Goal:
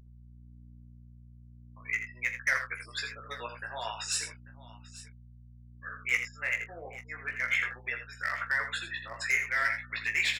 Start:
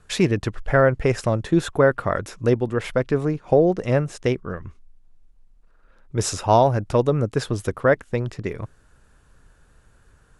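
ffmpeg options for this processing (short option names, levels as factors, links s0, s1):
-filter_complex "[0:a]areverse,bandreject=f=6100:w=8,afftfilt=real='re*gte(hypot(re,im),0.0251)':imag='im*gte(hypot(re,im),0.0251)':win_size=1024:overlap=0.75,alimiter=limit=0.335:level=0:latency=1:release=106,highpass=f=2100:t=q:w=4.9,aeval=exprs='val(0)+0.00316*(sin(2*PI*60*n/s)+sin(2*PI*2*60*n/s)/2+sin(2*PI*3*60*n/s)/3+sin(2*PI*4*60*n/s)/4+sin(2*PI*5*60*n/s)/5)':c=same,volume=7.94,asoftclip=hard,volume=0.126,flanger=delay=15:depth=3:speed=0.37,asplit=2[s0][s1];[s1]adelay=25,volume=0.282[s2];[s0][s2]amix=inputs=2:normalize=0,asplit=2[s3][s4];[s4]aecho=0:1:45|82|841:0.178|0.355|0.126[s5];[s3][s5]amix=inputs=2:normalize=0,adynamicequalizer=threshold=0.01:dfrequency=3900:dqfactor=0.7:tfrequency=3900:tqfactor=0.7:attack=5:release=100:ratio=0.375:range=2.5:mode=cutabove:tftype=highshelf"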